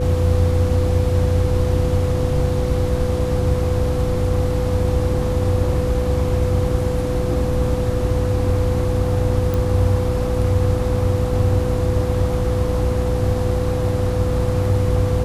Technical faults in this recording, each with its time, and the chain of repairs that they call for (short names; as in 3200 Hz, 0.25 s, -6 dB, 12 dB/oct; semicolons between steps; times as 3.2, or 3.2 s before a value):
hum 60 Hz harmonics 6 -24 dBFS
tone 500 Hz -23 dBFS
9.54 pop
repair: de-click; de-hum 60 Hz, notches 6; notch 500 Hz, Q 30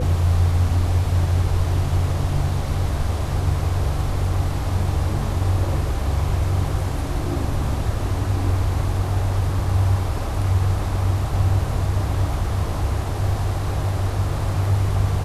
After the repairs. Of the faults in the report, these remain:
none